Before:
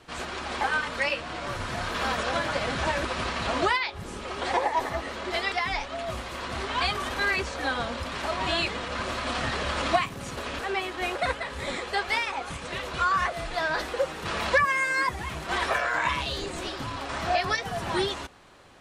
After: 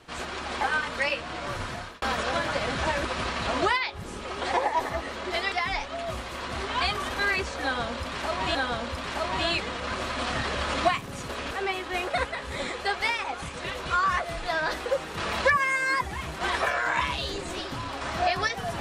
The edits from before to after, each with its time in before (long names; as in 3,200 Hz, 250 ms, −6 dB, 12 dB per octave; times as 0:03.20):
0:01.62–0:02.02: fade out linear
0:07.63–0:08.55: repeat, 2 plays